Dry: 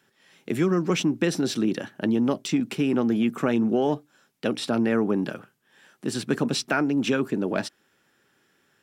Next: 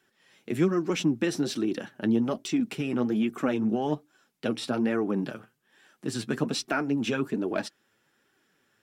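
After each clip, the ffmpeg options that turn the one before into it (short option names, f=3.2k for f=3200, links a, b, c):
-af "flanger=delay=2.6:depth=6.6:regen=31:speed=1.2:shape=sinusoidal"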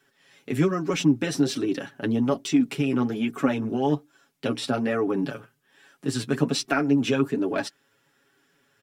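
-af "aecho=1:1:7.2:0.82,volume=1.5dB"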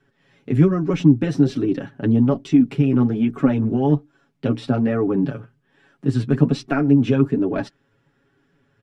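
-af "aemphasis=mode=reproduction:type=riaa"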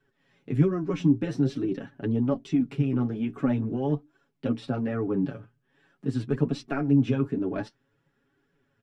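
-af "flanger=delay=1.8:depth=9.3:regen=59:speed=0.47:shape=triangular,volume=-3.5dB"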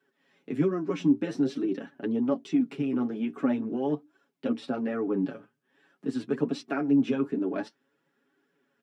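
-af "highpass=f=200:w=0.5412,highpass=f=200:w=1.3066"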